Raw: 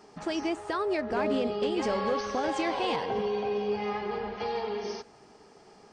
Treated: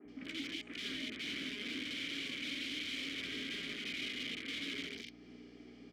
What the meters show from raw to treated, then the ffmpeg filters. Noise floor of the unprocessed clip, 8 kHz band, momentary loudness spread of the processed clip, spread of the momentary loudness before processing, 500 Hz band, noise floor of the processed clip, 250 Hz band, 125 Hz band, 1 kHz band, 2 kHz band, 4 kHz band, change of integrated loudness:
−56 dBFS, −3.5 dB, 11 LU, 6 LU, −25.0 dB, −56 dBFS, −11.5 dB, −11.5 dB, −29.0 dB, −2.5 dB, +2.0 dB, −9.5 dB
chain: -filter_complex "[0:a]acompressor=threshold=-50dB:ratio=2,equalizer=frequency=840:width_type=o:width=0.92:gain=11,flanger=delay=7.9:depth=5.8:regen=-72:speed=0.4:shape=triangular,aeval=exprs='(mod(100*val(0)+1,2)-1)/100':channel_layout=same,aeval=exprs='val(0)+0.00141*(sin(2*PI*60*n/s)+sin(2*PI*2*60*n/s)/2+sin(2*PI*3*60*n/s)/3+sin(2*PI*4*60*n/s)/4+sin(2*PI*5*60*n/s)/5)':channel_layout=same,acrossover=split=230|2000[link_01][link_02][link_03];[link_01]adelay=50[link_04];[link_03]adelay=80[link_05];[link_04][link_02][link_05]amix=inputs=3:normalize=0,adynamicequalizer=threshold=0.001:dfrequency=4200:dqfactor=0.71:tfrequency=4200:tqfactor=0.71:attack=5:release=100:ratio=0.375:range=2:mode=boostabove:tftype=bell,asplit=3[link_06][link_07][link_08];[link_06]bandpass=frequency=270:width_type=q:width=8,volume=0dB[link_09];[link_07]bandpass=frequency=2290:width_type=q:width=8,volume=-6dB[link_10];[link_08]bandpass=frequency=3010:width_type=q:width=8,volume=-9dB[link_11];[link_09][link_10][link_11]amix=inputs=3:normalize=0,volume=17.5dB"

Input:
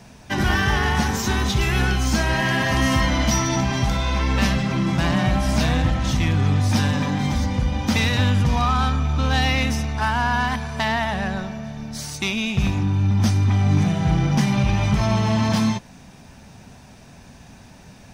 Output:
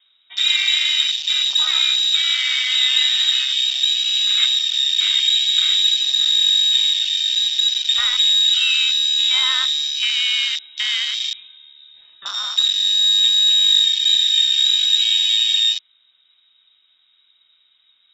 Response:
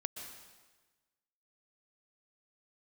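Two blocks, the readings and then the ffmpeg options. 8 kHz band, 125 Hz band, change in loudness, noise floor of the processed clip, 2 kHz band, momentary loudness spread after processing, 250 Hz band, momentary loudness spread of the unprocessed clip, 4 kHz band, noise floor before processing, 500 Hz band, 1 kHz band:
+4.5 dB, below −40 dB, +6.5 dB, −60 dBFS, −1.0 dB, 7 LU, below −40 dB, 5 LU, +18.0 dB, −46 dBFS, below −30 dB, −15.5 dB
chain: -af "lowpass=frequency=3300:width_type=q:width=0.5098,lowpass=frequency=3300:width_type=q:width=0.6013,lowpass=frequency=3300:width_type=q:width=0.9,lowpass=frequency=3300:width_type=q:width=2.563,afreqshift=-3900,afwtdn=0.0631,highshelf=frequency=2300:gain=10,volume=-4.5dB"

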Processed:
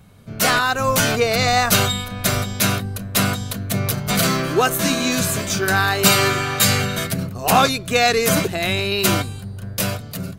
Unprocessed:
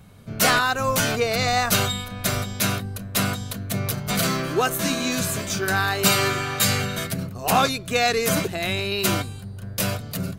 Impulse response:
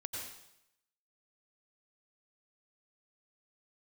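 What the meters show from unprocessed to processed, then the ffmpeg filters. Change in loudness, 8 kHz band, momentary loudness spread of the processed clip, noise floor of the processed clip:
+4.0 dB, +4.0 dB, 8 LU, −34 dBFS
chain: -af "dynaudnorm=framelen=100:gausssize=13:maxgain=5dB"

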